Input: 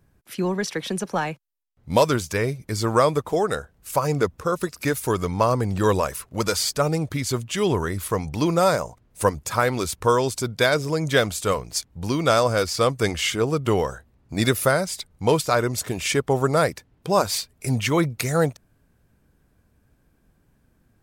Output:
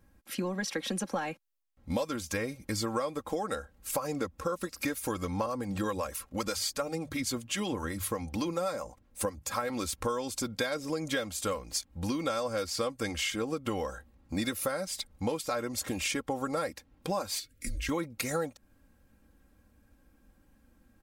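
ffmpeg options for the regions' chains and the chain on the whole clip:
-filter_complex "[0:a]asettb=1/sr,asplit=3[s0][s1][s2];[s0]atrim=end=5.464[s3];[s1]atrim=start=5.46:end=9.7,asetpts=PTS-STARTPTS,afade=t=in:d=0.004:c=qsin,afade=t=out:st=4.236:d=0.004:c=qsin,bandreject=f=50:t=h:w=6,bandreject=f=100:t=h:w=6,bandreject=f=150:t=h:w=6,acrossover=split=550[s4][s5];[s4]aeval=exprs='val(0)*(1-0.5/2+0.5/2*cos(2*PI*7.9*n/s))':c=same[s6];[s5]aeval=exprs='val(0)*(1-0.5/2-0.5/2*cos(2*PI*7.9*n/s))':c=same[s7];[s6][s7]amix=inputs=2:normalize=0[s8];[s2]atrim=start=9.696[s9];[s3][s8]acrossfade=d=0.004:c1=hsin:c2=qsin[s10];[s10][s9]acrossfade=d=0.004:c1=qsin:c2=hsin,asettb=1/sr,asplit=3[s11][s12][s13];[s11]atrim=end=17.394[s14];[s12]atrim=start=17.39:end=17.89,asetpts=PTS-STARTPTS,afade=t=in:d=0.004:c=qsin,afade=t=out:st=0.496:d=0.004:c=qsin,acompressor=threshold=0.0282:ratio=4:attack=3.2:release=140:knee=1:detection=peak,afreqshift=-160,asuperstop=centerf=870:order=4:qfactor=0.97[s15];[s13]atrim=start=17.886[s16];[s14][s15]acrossfade=d=0.004:c1=hsin:c2=qsin[s17];[s17][s16]acrossfade=d=0.004:c1=qsin:c2=hsin,aecho=1:1:3.7:0.7,acompressor=threshold=0.0447:ratio=6,volume=0.75"

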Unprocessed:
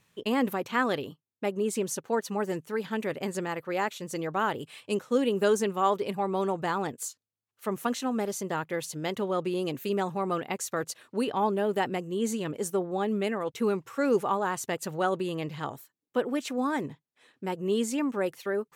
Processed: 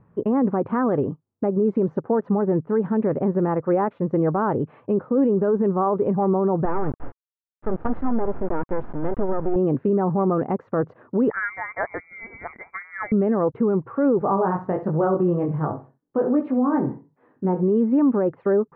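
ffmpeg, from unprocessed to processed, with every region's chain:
-filter_complex "[0:a]asettb=1/sr,asplit=3[s0][s1][s2];[s0]atrim=end=6.654[s3];[s1]atrim=start=6.65:end=9.56,asetpts=PTS-STARTPTS,afade=t=in:d=0.004:c=qsin,afade=t=out:st=2.906:d=0.004:c=qsin,acrusher=bits=4:dc=4:mix=0:aa=0.000001,bandreject=f=1100:w=13[s4];[s2]atrim=start=9.556[s5];[s3][s4]acrossfade=d=0.004:c1=hsin:c2=qsin[s6];[s6][s5]acrossfade=d=0.004:c1=qsin:c2=hsin,asettb=1/sr,asplit=3[s7][s8][s9];[s7]atrim=end=11.304[s10];[s8]atrim=start=11.3:end=13.12,asetpts=PTS-STARTPTS,afade=t=in:d=0.004:c=qsin,afade=t=out:st=1.816:d=0.004:c=qsin,highpass=f=250:p=1,lowpass=f=2100:t=q:w=0.5098,lowpass=f=2100:t=q:w=0.6013,lowpass=f=2100:t=q:w=0.9,lowpass=f=2100:t=q:w=2.563,afreqshift=-2500[s11];[s9]atrim=start=13.116[s12];[s10][s11]acrossfade=d=0.004:c1=hsin:c2=qsin[s13];[s13][s12]acrossfade=d=0.004:c1=qsin:c2=hsin,asettb=1/sr,asplit=3[s14][s15][s16];[s14]atrim=end=14.194[s17];[s15]atrim=start=14.19:end=17.63,asetpts=PTS-STARTPTS,afade=t=in:d=0.004:c=qsin,afade=t=out:st=3.436:d=0.004:c=qsin,aecho=1:1:65|130|195:0.211|0.0592|0.0166,atrim=end_sample=151704,flanger=delay=19:depth=4:speed=1.3[s18];[s16]atrim=start=17.626[s19];[s17][s18]acrossfade=d=0.004:c1=hsin:c2=qsin[s20];[s20][s19]acrossfade=d=0.004:c1=qsin:c2=hsin,lowpass=f=1300:w=0.5412,lowpass=f=1300:w=1.3066,lowshelf=f=500:g=9,alimiter=limit=0.0944:level=0:latency=1:release=52,volume=2.51"

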